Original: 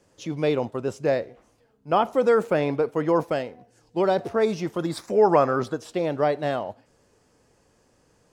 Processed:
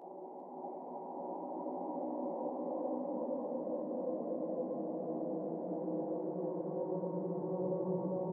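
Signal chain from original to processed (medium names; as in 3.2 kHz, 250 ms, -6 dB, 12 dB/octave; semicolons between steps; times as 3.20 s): self-modulated delay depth 0.33 ms; Doppler pass-by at 2.91 s, 37 m/s, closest 2.8 m; elliptic low-pass 920 Hz, stop band 40 dB; compression 10:1, threshold -50 dBFS, peak gain reduction 26.5 dB; high-pass sweep 630 Hz -> 100 Hz, 0.05–3.96 s; Paulstretch 5.9×, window 1.00 s, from 1.45 s; doubling 16 ms -7 dB; on a send: delay 402 ms -9 dB; on the sum: trim +11.5 dB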